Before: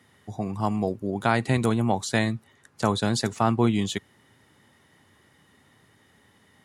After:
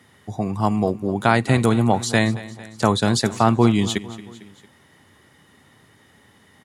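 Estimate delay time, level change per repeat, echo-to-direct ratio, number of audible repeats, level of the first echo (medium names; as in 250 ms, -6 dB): 226 ms, -4.5 dB, -16.0 dB, 3, -17.5 dB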